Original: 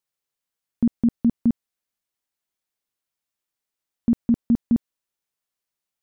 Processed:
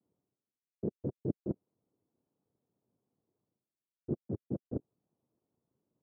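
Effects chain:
stylus tracing distortion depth 0.12 ms
spectral tilt −4 dB per octave
reversed playback
downward compressor 8 to 1, threshold −46 dBFS, peak gain reduction 38.5 dB
reversed playback
cochlear-implant simulation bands 3
Gaussian smoothing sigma 11 samples
level +12.5 dB

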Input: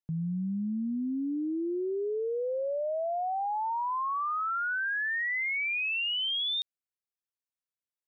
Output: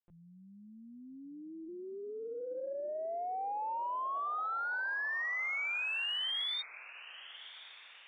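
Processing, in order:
high-pass filter 550 Hz 12 dB per octave
linear-prediction vocoder at 8 kHz pitch kept
feedback delay with all-pass diffusion 1,085 ms, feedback 46%, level −15.5 dB
harmonic generator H 3 −31 dB, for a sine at −24 dBFS
level −4.5 dB

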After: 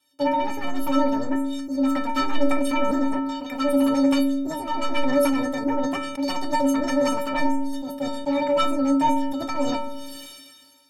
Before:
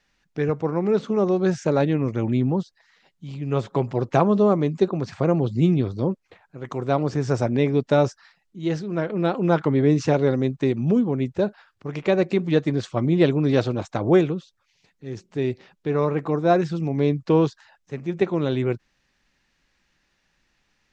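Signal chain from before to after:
sub-octave generator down 2 octaves, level +2 dB
high-pass filter 88 Hz 12 dB per octave
in parallel at −2.5 dB: downward compressor, threshold −29 dBFS, peak gain reduction 17.5 dB
on the sum: sine wavefolder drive 11 dB, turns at −1.5 dBFS
change of speed 1.92×
stiff-string resonator 270 Hz, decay 0.62 s, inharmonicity 0.03
on a send at −12.5 dB: convolution reverb RT60 0.35 s, pre-delay 7 ms
on the sum: level that may fall only so fast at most 32 dB per second

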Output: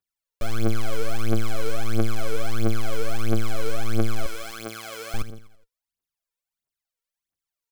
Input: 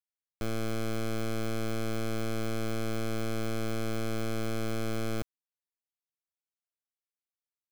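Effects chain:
0:04.26–0:05.14: high-pass filter 1,100 Hz 6 dB per octave
on a send: repeating echo 83 ms, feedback 53%, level −13.5 dB
on the sum: phase shifter 1.5 Hz, delay 2.3 ms, feedback 79%
level +1 dB

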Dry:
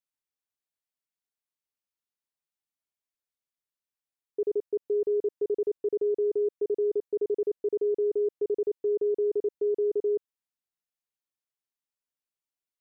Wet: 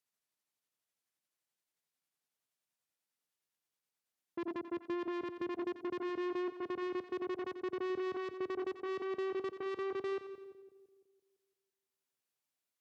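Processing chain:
pitch glide at a constant tempo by −5 semitones ending unshifted
tube saturation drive 39 dB, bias 0.55
high-pass filter 100 Hz 24 dB per octave
echo with a time of its own for lows and highs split 600 Hz, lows 169 ms, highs 88 ms, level −12 dB
in parallel at −2.5 dB: downward compressor, threshold −48 dBFS, peak gain reduction 11.5 dB
on the sum: level +1 dB

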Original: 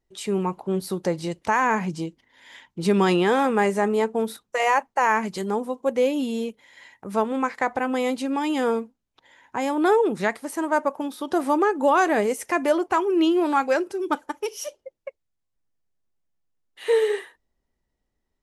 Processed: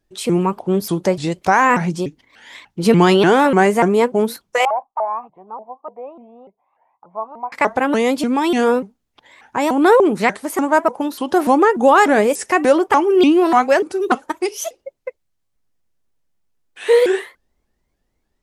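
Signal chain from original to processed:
0:04.65–0:07.52: formant resonators in series a
pitch modulation by a square or saw wave saw up 3.4 Hz, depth 250 cents
level +7.5 dB

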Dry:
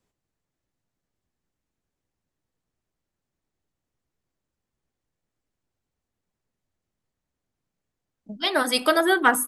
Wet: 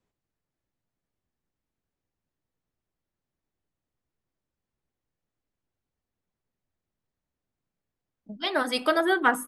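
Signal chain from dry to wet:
high-shelf EQ 6,400 Hz −11.5 dB
level −3 dB

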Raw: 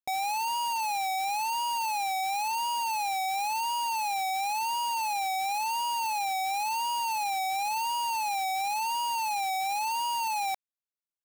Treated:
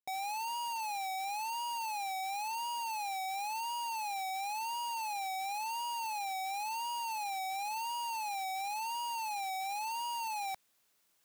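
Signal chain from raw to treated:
low-shelf EQ 77 Hz −10.5 dB
reversed playback
upward compression, threshold −42 dBFS
reversed playback
level −7.5 dB

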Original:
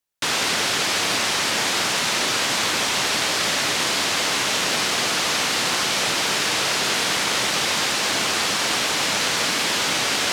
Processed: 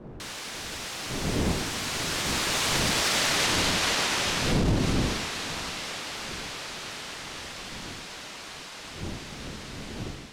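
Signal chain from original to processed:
fade-out on the ending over 0.54 s
wind on the microphone 290 Hz −20 dBFS
source passing by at 0:03.32, 34 m/s, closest 13 metres
brickwall limiter −18 dBFS, peak gain reduction 12 dB
level +2.5 dB

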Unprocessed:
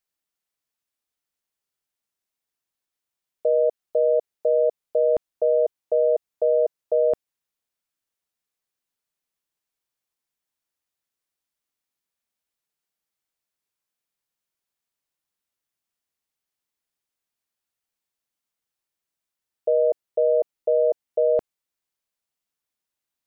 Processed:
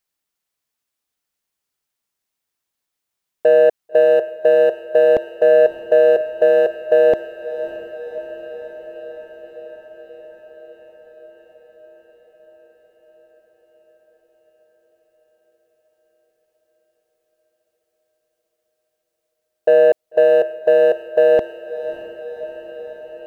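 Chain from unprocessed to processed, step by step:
leveller curve on the samples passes 1
feedback delay with all-pass diffusion 599 ms, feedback 73%, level −12.5 dB
level +7 dB

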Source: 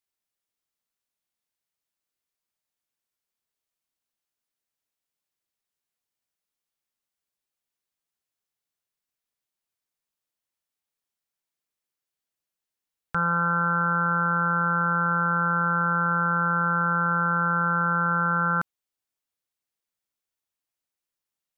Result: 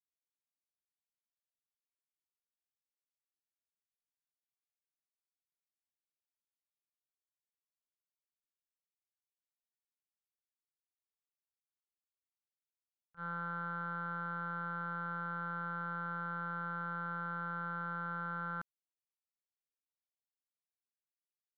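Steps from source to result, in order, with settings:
noise gate −19 dBFS, range −47 dB
level +6.5 dB

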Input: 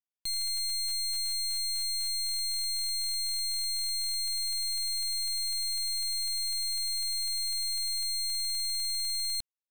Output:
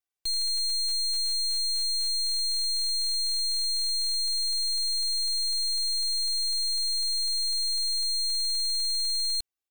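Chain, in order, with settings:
comb filter 2.6 ms, depth 94%

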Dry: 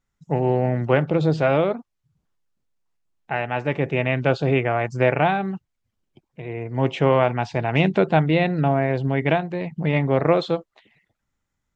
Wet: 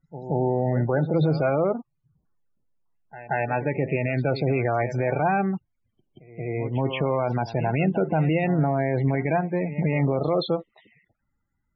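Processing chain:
spectral peaks only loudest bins 32
backwards echo 179 ms −17.5 dB
brickwall limiter −15.5 dBFS, peak gain reduction 10.5 dB
level +2 dB

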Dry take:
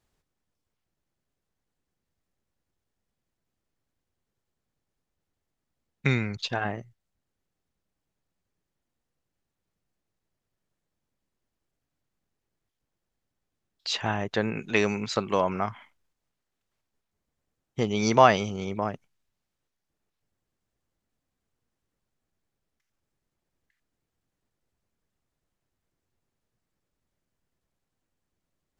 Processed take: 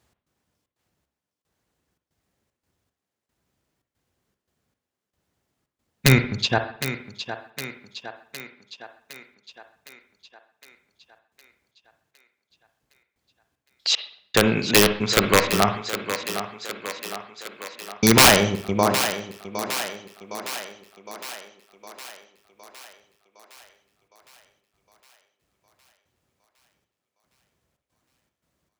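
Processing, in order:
high-pass filter 48 Hz 24 dB per octave
low-shelf EQ 98 Hz −2 dB
wrap-around overflow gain 14 dB
gate pattern "x.xxx.xx...xxx" 114 BPM −60 dB
feedback echo with a high-pass in the loop 761 ms, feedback 61%, high-pass 230 Hz, level −10 dB
convolution reverb, pre-delay 44 ms, DRR 8.5 dB
level +9 dB

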